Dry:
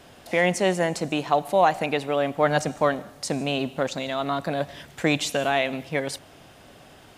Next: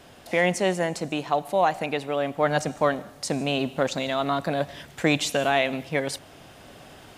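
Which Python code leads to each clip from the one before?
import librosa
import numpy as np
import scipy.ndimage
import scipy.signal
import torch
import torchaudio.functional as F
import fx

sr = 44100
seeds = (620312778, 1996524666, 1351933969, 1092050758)

y = fx.rider(x, sr, range_db=10, speed_s=2.0)
y = y * librosa.db_to_amplitude(-1.5)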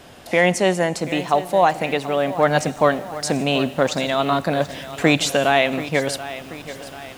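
y = fx.echo_crushed(x, sr, ms=733, feedback_pct=55, bits=7, wet_db=-14.0)
y = y * librosa.db_to_amplitude(5.5)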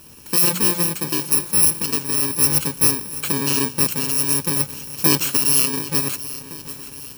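y = fx.bit_reversed(x, sr, seeds[0], block=64)
y = fx.hum_notches(y, sr, base_hz=60, count=3)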